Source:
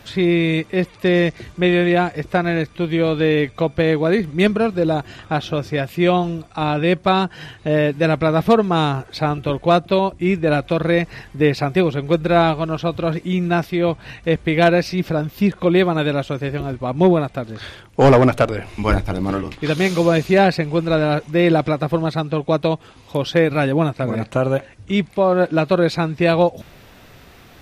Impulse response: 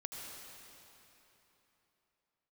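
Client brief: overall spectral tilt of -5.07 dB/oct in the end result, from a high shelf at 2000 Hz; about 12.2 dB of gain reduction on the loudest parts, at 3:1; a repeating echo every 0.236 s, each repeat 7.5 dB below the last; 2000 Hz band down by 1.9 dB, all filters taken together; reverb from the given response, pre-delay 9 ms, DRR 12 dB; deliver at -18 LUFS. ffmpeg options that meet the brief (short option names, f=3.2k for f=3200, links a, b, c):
-filter_complex "[0:a]highshelf=f=2k:g=8,equalizer=f=2k:t=o:g=-7.5,acompressor=threshold=-25dB:ratio=3,aecho=1:1:236|472|708|944|1180:0.422|0.177|0.0744|0.0312|0.0131,asplit=2[a][b];[1:a]atrim=start_sample=2205,adelay=9[c];[b][c]afir=irnorm=-1:irlink=0,volume=-11dB[d];[a][d]amix=inputs=2:normalize=0,volume=8dB"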